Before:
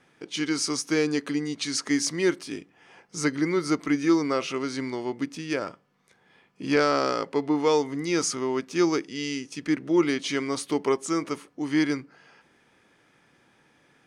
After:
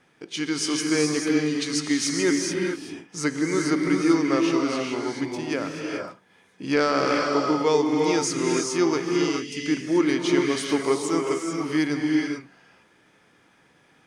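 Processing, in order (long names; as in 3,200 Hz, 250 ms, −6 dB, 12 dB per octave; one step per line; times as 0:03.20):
reverb whose tail is shaped and stops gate 460 ms rising, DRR 0.5 dB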